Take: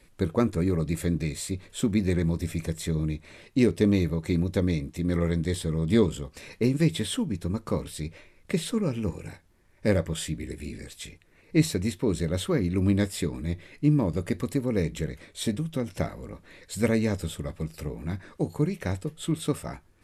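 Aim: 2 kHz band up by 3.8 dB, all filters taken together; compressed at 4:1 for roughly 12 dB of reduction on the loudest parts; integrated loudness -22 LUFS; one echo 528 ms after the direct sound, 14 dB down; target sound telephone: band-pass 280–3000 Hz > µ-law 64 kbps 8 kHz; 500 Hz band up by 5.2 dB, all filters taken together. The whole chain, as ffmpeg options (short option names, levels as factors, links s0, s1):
-af "equalizer=f=500:t=o:g=7,equalizer=f=2000:t=o:g=5,acompressor=threshold=0.0398:ratio=4,highpass=280,lowpass=3000,aecho=1:1:528:0.2,volume=5.01" -ar 8000 -c:a pcm_mulaw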